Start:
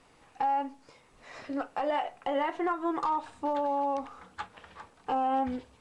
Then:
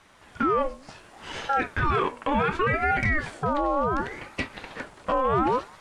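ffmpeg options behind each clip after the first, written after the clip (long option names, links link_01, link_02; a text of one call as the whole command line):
ffmpeg -i in.wav -af "alimiter=level_in=4dB:limit=-24dB:level=0:latency=1:release=15,volume=-4dB,dynaudnorm=framelen=200:gausssize=3:maxgain=7dB,aeval=exprs='val(0)*sin(2*PI*670*n/s+670*0.65/0.68*sin(2*PI*0.68*n/s))':channel_layout=same,volume=7dB" out.wav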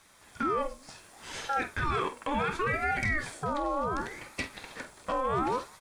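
ffmpeg -i in.wav -filter_complex "[0:a]aemphasis=mode=production:type=75kf,bandreject=frequency=2900:width=11,asplit=2[link_01][link_02];[link_02]adelay=48,volume=-12dB[link_03];[link_01][link_03]amix=inputs=2:normalize=0,volume=-7dB" out.wav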